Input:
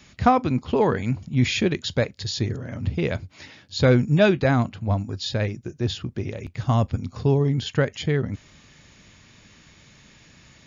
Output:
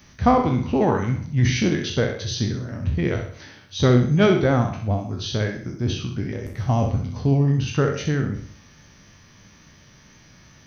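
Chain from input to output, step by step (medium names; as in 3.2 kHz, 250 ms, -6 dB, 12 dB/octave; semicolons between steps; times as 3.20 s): spectral sustain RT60 0.47 s; peaking EQ 4.8 kHz -9 dB 1.9 oct; formant shift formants -2 st; tone controls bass 0 dB, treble +11 dB; flutter echo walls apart 11 m, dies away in 0.45 s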